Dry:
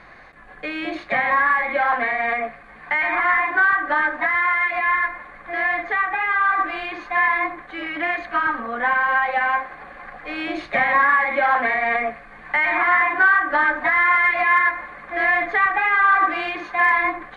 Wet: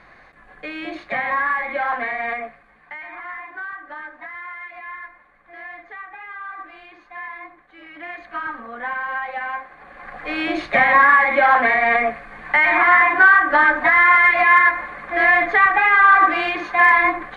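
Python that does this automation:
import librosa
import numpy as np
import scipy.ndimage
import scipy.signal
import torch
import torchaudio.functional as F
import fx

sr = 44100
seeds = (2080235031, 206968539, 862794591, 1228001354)

y = fx.gain(x, sr, db=fx.line((2.31, -3.0), (3.02, -15.0), (7.72, -15.0), (8.38, -7.0), (9.73, -7.0), (10.22, 4.0)))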